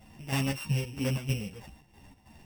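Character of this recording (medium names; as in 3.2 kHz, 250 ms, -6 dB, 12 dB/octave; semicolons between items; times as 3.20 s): a buzz of ramps at a fixed pitch in blocks of 16 samples; chopped level 3.1 Hz, depth 65%, duty 60%; a shimmering, thickened sound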